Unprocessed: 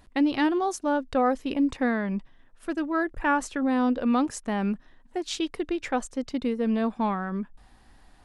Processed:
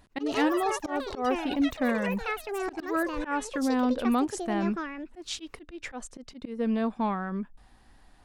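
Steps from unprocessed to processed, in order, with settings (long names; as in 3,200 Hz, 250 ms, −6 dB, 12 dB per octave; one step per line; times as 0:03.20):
delay with pitch and tempo change per echo 95 ms, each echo +7 semitones, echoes 3, each echo −6 dB
volume swells 146 ms
level −2 dB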